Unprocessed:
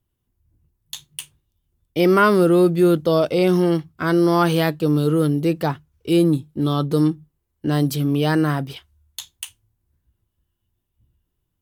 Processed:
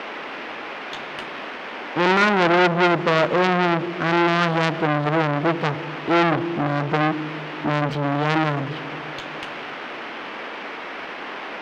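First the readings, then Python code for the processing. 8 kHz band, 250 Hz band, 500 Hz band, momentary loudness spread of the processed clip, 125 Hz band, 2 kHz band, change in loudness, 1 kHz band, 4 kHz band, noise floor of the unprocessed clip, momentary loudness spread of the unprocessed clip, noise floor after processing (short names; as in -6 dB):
n/a, -4.5 dB, -3.0 dB, 15 LU, -4.0 dB, +7.0 dB, -3.5 dB, +5.0 dB, +3.0 dB, -76 dBFS, 20 LU, -34 dBFS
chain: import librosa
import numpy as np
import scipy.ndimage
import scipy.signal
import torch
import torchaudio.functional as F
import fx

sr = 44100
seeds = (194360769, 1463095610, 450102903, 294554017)

p1 = scipy.signal.sosfilt(scipy.signal.butter(2, 120.0, 'highpass', fs=sr, output='sos'), x)
p2 = fx.dmg_noise_band(p1, sr, seeds[0], low_hz=230.0, high_hz=3100.0, level_db=-35.0)
p3 = fx.sample_hold(p2, sr, seeds[1], rate_hz=7400.0, jitter_pct=20)
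p4 = p2 + (p3 * librosa.db_to_amplitude(-3.0))
p5 = fx.air_absorb(p4, sr, metres=190.0)
p6 = fx.rev_schroeder(p5, sr, rt60_s=2.9, comb_ms=26, drr_db=14.5)
y = fx.transformer_sat(p6, sr, knee_hz=2400.0)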